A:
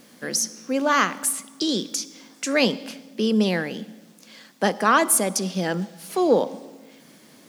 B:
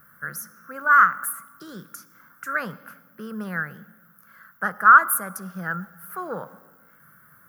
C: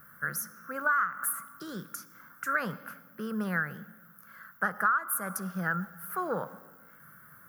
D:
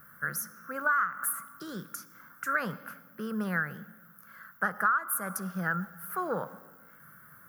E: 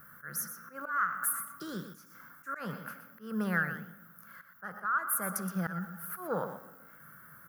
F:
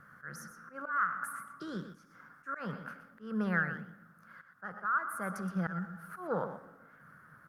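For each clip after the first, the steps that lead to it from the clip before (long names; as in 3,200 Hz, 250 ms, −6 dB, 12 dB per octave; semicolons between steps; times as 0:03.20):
drawn EQ curve 140 Hz 0 dB, 260 Hz −22 dB, 890 Hz −13 dB, 1,400 Hz +11 dB, 2,400 Hz −22 dB, 3,800 Hz −29 dB, 7,900 Hz −21 dB, 14,000 Hz +6 dB; level +2.5 dB
downward compressor 8 to 1, threshold −24 dBFS, peak gain reduction 17 dB
no processing that can be heard
volume swells 190 ms; on a send: single-tap delay 121 ms −10.5 dB
high-frequency loss of the air 95 metres; Opus 48 kbit/s 48,000 Hz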